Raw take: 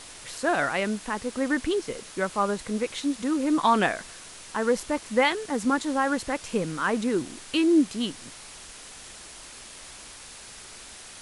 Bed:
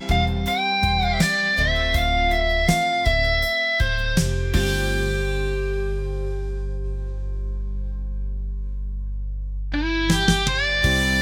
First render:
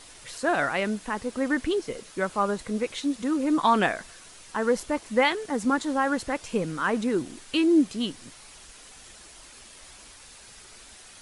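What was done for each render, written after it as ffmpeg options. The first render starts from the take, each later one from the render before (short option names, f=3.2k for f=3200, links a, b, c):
-af "afftdn=nr=6:nf=-45"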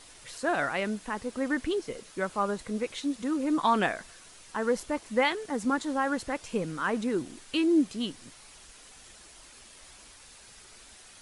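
-af "volume=-3.5dB"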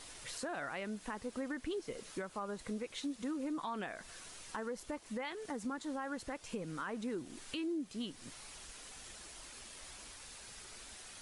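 -af "alimiter=level_in=0.5dB:limit=-24dB:level=0:latency=1:release=328,volume=-0.5dB,acompressor=threshold=-42dB:ratio=2"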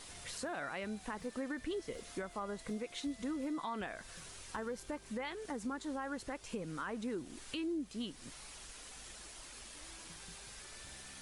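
-filter_complex "[1:a]volume=-39.5dB[a];[0:a][a]amix=inputs=2:normalize=0"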